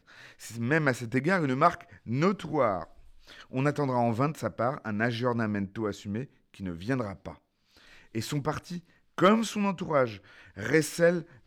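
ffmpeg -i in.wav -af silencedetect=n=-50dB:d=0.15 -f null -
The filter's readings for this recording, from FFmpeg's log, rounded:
silence_start: 6.26
silence_end: 6.54 | silence_duration: 0.28
silence_start: 7.38
silence_end: 7.77 | silence_duration: 0.39
silence_start: 8.90
silence_end: 9.18 | silence_duration: 0.28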